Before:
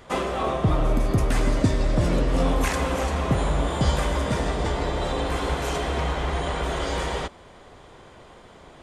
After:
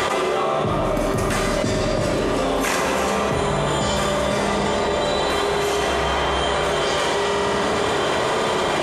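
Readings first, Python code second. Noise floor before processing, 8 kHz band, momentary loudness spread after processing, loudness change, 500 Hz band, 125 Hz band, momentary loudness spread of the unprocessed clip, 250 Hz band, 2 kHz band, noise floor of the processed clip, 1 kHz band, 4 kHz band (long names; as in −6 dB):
−48 dBFS, +8.5 dB, 1 LU, +4.0 dB, +7.5 dB, −2.5 dB, 4 LU, +3.0 dB, +8.0 dB, −21 dBFS, +7.5 dB, +9.5 dB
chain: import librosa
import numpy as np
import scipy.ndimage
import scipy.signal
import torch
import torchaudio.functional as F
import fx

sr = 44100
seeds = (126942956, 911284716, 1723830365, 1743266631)

y = fx.highpass(x, sr, hz=360.0, slope=6)
y = fx.rev_fdn(y, sr, rt60_s=1.2, lf_ratio=1.55, hf_ratio=0.9, size_ms=15.0, drr_db=1.0)
y = fx.env_flatten(y, sr, amount_pct=100)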